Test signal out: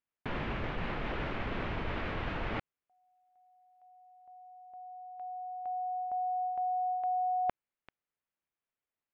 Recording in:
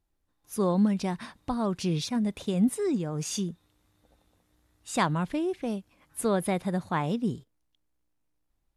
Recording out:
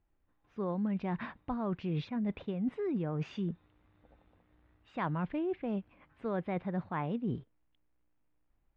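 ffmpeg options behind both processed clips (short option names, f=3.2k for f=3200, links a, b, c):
-af "lowpass=f=2.7k:w=0.5412,lowpass=f=2.7k:w=1.3066,areverse,acompressor=threshold=-33dB:ratio=6,areverse,volume=1.5dB"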